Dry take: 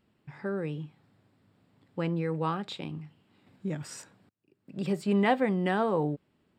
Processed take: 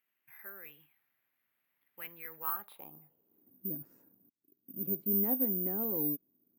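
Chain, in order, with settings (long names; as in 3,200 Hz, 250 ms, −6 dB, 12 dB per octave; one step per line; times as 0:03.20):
band-pass filter sweep 2,100 Hz → 280 Hz, 0:02.24–0:03.54
bad sample-rate conversion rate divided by 3×, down none, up zero stuff
level −3.5 dB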